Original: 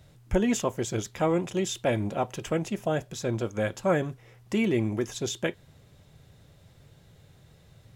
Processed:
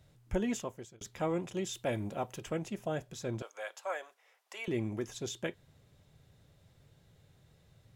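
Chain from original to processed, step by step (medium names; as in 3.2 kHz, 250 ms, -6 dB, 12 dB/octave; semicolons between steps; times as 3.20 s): 0.47–1.01 s: fade out; 1.73–2.41 s: treble shelf 11 kHz +9.5 dB; 3.42–4.68 s: high-pass 620 Hz 24 dB/octave; trim -8 dB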